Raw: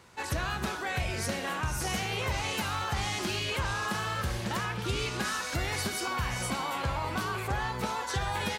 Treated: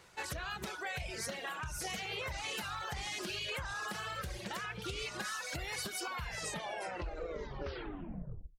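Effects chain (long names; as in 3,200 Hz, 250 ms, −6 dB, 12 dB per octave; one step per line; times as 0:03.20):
turntable brake at the end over 2.47 s
reverb reduction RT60 1.4 s
downward compressor, threshold −33 dBFS, peak gain reduction 7 dB
graphic EQ with 15 bands 100 Hz −8 dB, 250 Hz −9 dB, 1,000 Hz −4 dB
highs frequency-modulated by the lows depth 0.13 ms
level −1 dB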